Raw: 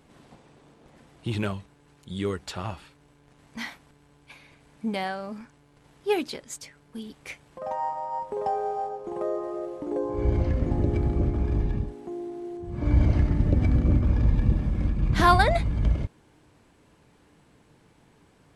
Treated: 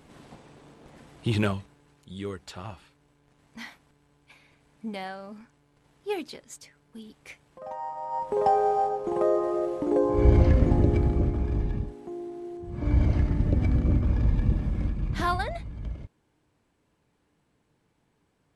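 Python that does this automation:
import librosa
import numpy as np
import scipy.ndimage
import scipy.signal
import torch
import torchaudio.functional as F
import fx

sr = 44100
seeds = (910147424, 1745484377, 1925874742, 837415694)

y = fx.gain(x, sr, db=fx.line((1.44, 3.5), (2.14, -6.0), (7.86, -6.0), (8.39, 5.5), (10.53, 5.5), (11.45, -2.0), (14.8, -2.0), (15.57, -12.0)))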